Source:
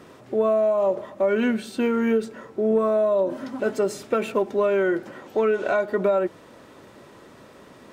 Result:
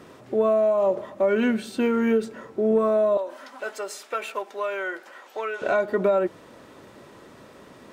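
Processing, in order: 3.17–5.62 HPF 830 Hz 12 dB/oct

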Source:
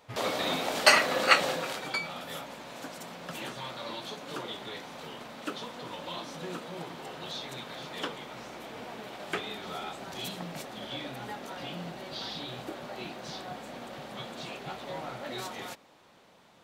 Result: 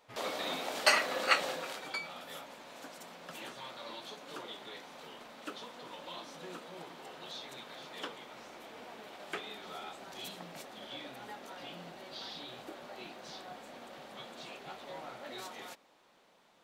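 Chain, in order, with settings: bell 99 Hz -11 dB 1.7 oct; gain -6 dB

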